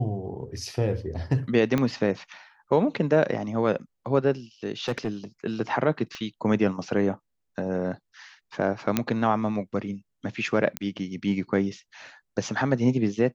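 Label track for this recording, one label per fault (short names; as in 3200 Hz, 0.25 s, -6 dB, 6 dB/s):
1.780000	1.780000	pop -12 dBFS
4.880000	5.090000	clipped -21.5 dBFS
6.150000	6.150000	pop -23 dBFS
8.970000	8.970000	pop -7 dBFS
10.770000	10.770000	pop -10 dBFS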